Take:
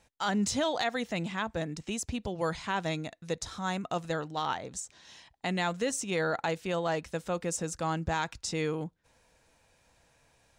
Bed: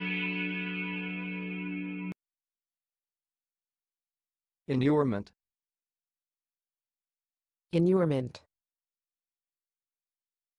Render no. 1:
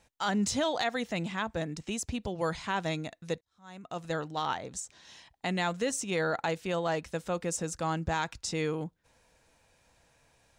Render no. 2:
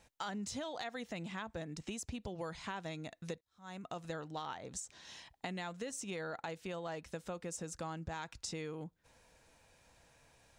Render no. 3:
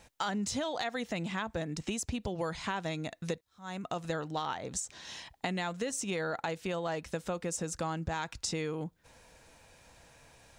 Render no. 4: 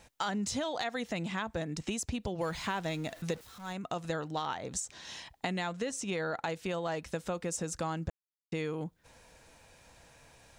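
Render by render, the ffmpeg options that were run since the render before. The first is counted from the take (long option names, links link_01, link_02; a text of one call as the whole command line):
ffmpeg -i in.wav -filter_complex "[0:a]asplit=2[link_01][link_02];[link_01]atrim=end=3.41,asetpts=PTS-STARTPTS,afade=type=out:start_time=3.406:duration=0.004:curve=hsin[link_03];[link_02]atrim=start=3.41,asetpts=PTS-STARTPTS,afade=type=in:duration=0.74:curve=qua[link_04];[link_03][link_04]concat=n=2:v=0:a=1" out.wav
ffmpeg -i in.wav -af "acompressor=threshold=-40dB:ratio=5" out.wav
ffmpeg -i in.wav -af "volume=7.5dB" out.wav
ffmpeg -i in.wav -filter_complex "[0:a]asettb=1/sr,asplit=3[link_01][link_02][link_03];[link_01]atrim=end=2.414[link_04];[link_02]atrim=start=2.41:end=3.73,asetpts=PTS-STARTPTS,afade=type=in:duration=0.004:curve=qsin,afade=type=out:start_time=1.316:duration=0.004:curve=qsin,aeval=exprs='val(0)+0.5*0.00447*sgn(val(0))':channel_layout=same[link_05];[link_03]atrim=start=3.726[link_06];[link_04][link_05]acrossfade=duration=0.004:curve1=hsin:curve2=qsin[link_07];[link_07][link_06]acrossfade=duration=0.004:curve1=qsin:curve2=hsin,asettb=1/sr,asplit=3[link_08][link_09][link_10];[link_08]atrim=end=5.664[link_11];[link_09]atrim=start=5.66:end=6.43,asetpts=PTS-STARTPTS,afade=type=in:duration=0.004:curve=qsin,afade=type=out:start_time=0.766:duration=0.004:curve=qsin,highshelf=frequency=11000:gain=-11[link_12];[link_10]atrim=start=6.426[link_13];[link_11][link_12]acrossfade=duration=0.004:curve1=hsin:curve2=qsin[link_14];[link_14][link_13]acrossfade=duration=0.004:curve1=qsin:curve2=hsin,asplit=3[link_15][link_16][link_17];[link_15]atrim=end=8.1,asetpts=PTS-STARTPTS,afade=type=out:start_time=8.096:duration=0.004:curve=hsin[link_18];[link_16]atrim=start=8.1:end=8.52,asetpts=PTS-STARTPTS,volume=0[link_19];[link_17]atrim=start=8.52,asetpts=PTS-STARTPTS,afade=type=in:duration=0.004:curve=hsin[link_20];[link_18][link_19][link_20]concat=n=3:v=0:a=1" out.wav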